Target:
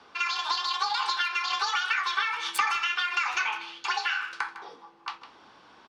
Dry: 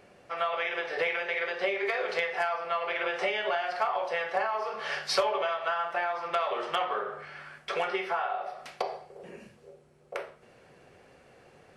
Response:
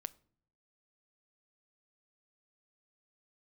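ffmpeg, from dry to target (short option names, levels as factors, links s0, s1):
-filter_complex "[1:a]atrim=start_sample=2205,asetrate=31752,aresample=44100[s0];[0:a][s0]afir=irnorm=-1:irlink=0,acrossover=split=100|630|3100[s1][s2][s3][s4];[s4]acrusher=bits=3:mix=0:aa=0.5[s5];[s1][s2][s3][s5]amix=inputs=4:normalize=0,asplit=2[s6][s7];[s7]adelay=310,highpass=300,lowpass=3400,asoftclip=type=hard:threshold=0.0562,volume=0.224[s8];[s6][s8]amix=inputs=2:normalize=0,afreqshift=19,asetrate=88200,aresample=44100,volume=1.58"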